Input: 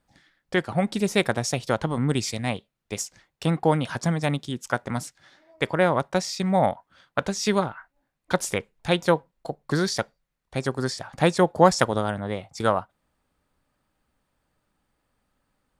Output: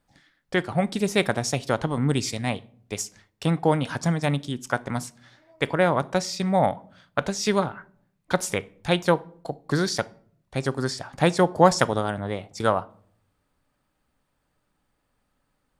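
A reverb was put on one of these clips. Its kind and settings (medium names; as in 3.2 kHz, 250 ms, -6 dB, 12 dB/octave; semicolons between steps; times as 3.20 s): simulated room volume 700 m³, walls furnished, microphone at 0.32 m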